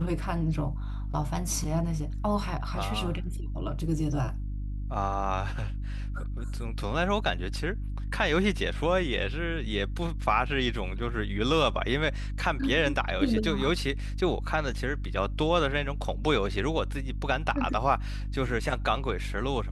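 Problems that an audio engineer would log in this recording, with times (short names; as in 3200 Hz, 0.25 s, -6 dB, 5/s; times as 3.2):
hum 50 Hz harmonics 6 -33 dBFS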